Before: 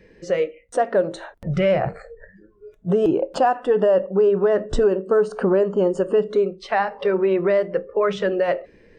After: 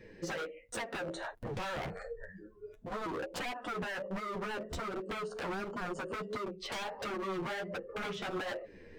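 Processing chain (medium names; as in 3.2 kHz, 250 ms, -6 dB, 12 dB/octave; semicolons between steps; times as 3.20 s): compression 4:1, threshold -28 dBFS, peak gain reduction 13 dB; wavefolder -30.5 dBFS; flange 1.4 Hz, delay 7.9 ms, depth 5.6 ms, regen -4%; trim +1 dB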